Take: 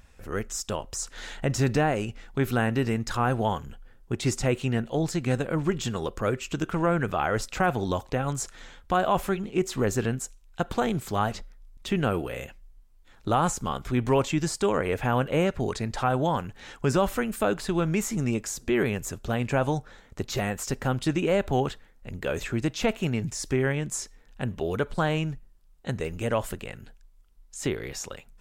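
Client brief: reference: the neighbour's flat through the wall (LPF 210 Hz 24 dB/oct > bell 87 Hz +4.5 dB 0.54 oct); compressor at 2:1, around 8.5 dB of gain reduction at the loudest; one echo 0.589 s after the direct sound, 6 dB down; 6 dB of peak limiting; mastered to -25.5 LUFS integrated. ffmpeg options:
-af "acompressor=threshold=-35dB:ratio=2,alimiter=level_in=0.5dB:limit=-24dB:level=0:latency=1,volume=-0.5dB,lowpass=f=210:w=0.5412,lowpass=f=210:w=1.3066,equalizer=f=87:t=o:w=0.54:g=4.5,aecho=1:1:589:0.501,volume=15dB"

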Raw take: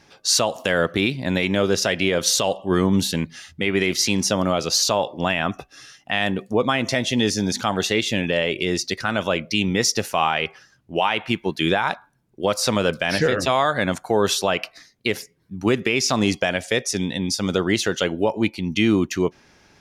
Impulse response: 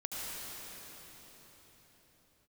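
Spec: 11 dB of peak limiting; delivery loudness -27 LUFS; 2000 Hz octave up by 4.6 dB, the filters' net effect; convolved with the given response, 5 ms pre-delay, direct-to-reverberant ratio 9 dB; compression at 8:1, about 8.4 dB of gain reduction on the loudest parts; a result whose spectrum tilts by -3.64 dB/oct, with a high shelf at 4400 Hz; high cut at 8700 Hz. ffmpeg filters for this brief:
-filter_complex "[0:a]lowpass=8.7k,equalizer=f=2k:t=o:g=7,highshelf=f=4.4k:g=-5.5,acompressor=threshold=-22dB:ratio=8,alimiter=limit=-18dB:level=0:latency=1,asplit=2[a][b];[1:a]atrim=start_sample=2205,adelay=5[c];[b][c]afir=irnorm=-1:irlink=0,volume=-12.5dB[d];[a][d]amix=inputs=2:normalize=0,volume=2.5dB"

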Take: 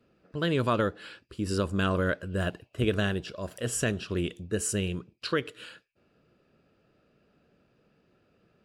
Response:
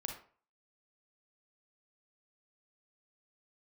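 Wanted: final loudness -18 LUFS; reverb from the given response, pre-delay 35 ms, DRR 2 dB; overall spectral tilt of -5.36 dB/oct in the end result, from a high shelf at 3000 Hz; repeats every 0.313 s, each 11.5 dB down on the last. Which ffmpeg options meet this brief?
-filter_complex "[0:a]highshelf=f=3k:g=-3.5,aecho=1:1:313|626|939:0.266|0.0718|0.0194,asplit=2[a][b];[1:a]atrim=start_sample=2205,adelay=35[c];[b][c]afir=irnorm=-1:irlink=0,volume=-1dB[d];[a][d]amix=inputs=2:normalize=0,volume=10.5dB"

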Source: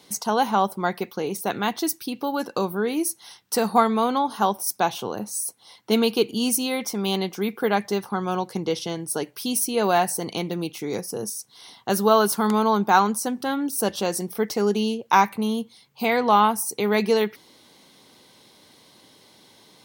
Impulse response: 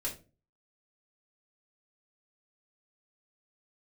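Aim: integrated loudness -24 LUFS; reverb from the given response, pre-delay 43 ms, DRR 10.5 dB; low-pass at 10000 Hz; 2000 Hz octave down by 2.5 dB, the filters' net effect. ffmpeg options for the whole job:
-filter_complex "[0:a]lowpass=10k,equalizer=f=2k:t=o:g=-3.5,asplit=2[a][b];[1:a]atrim=start_sample=2205,adelay=43[c];[b][c]afir=irnorm=-1:irlink=0,volume=-12.5dB[d];[a][d]amix=inputs=2:normalize=0"

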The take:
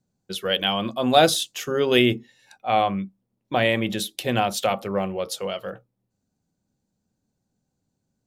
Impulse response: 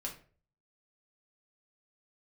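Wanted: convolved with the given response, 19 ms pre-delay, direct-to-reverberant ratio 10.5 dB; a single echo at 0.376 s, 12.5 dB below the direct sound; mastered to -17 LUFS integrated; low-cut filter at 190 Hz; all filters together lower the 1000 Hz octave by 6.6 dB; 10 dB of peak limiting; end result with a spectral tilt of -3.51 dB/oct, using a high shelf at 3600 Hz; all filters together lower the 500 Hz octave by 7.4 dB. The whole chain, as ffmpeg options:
-filter_complex "[0:a]highpass=190,equalizer=f=500:t=o:g=-8,equalizer=f=1k:t=o:g=-6,highshelf=f=3.6k:g=4,alimiter=limit=-13.5dB:level=0:latency=1,aecho=1:1:376:0.237,asplit=2[a][b];[1:a]atrim=start_sample=2205,adelay=19[c];[b][c]afir=irnorm=-1:irlink=0,volume=-10dB[d];[a][d]amix=inputs=2:normalize=0,volume=10.5dB"

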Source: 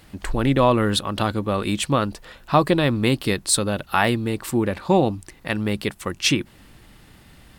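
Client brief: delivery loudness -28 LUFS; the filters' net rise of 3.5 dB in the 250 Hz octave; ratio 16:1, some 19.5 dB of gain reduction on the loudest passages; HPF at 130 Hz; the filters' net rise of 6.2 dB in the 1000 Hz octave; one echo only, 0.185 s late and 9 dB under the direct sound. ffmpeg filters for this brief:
-af "highpass=130,equalizer=f=250:t=o:g=4.5,equalizer=f=1k:t=o:g=7.5,acompressor=threshold=-26dB:ratio=16,aecho=1:1:185:0.355,volume=3.5dB"

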